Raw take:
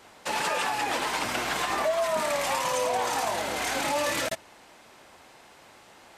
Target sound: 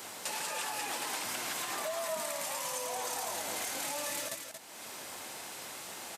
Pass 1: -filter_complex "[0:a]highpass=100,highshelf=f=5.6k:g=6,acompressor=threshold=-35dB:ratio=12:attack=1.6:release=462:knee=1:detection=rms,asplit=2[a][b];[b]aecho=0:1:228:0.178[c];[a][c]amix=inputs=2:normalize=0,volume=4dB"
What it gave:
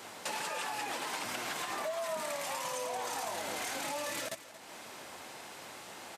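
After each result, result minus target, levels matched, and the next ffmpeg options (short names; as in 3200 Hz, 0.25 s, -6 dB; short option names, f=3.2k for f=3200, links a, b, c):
echo-to-direct -8.5 dB; 8000 Hz band -3.5 dB
-filter_complex "[0:a]highpass=100,highshelf=f=5.6k:g=6,acompressor=threshold=-35dB:ratio=12:attack=1.6:release=462:knee=1:detection=rms,asplit=2[a][b];[b]aecho=0:1:228:0.473[c];[a][c]amix=inputs=2:normalize=0,volume=4dB"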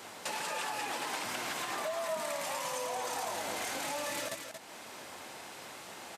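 8000 Hz band -3.5 dB
-filter_complex "[0:a]highpass=100,highshelf=f=5.6k:g=16.5,acompressor=threshold=-35dB:ratio=12:attack=1.6:release=462:knee=1:detection=rms,asplit=2[a][b];[b]aecho=0:1:228:0.473[c];[a][c]amix=inputs=2:normalize=0,volume=4dB"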